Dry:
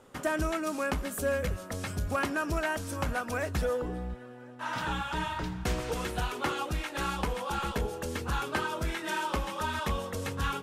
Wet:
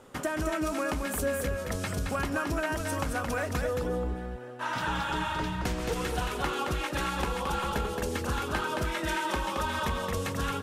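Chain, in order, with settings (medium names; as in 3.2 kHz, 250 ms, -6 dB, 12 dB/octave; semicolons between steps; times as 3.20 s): compression, threshold -31 dBFS, peak gain reduction 6.5 dB; on a send: delay 221 ms -4.5 dB; on the sum: trim +3.5 dB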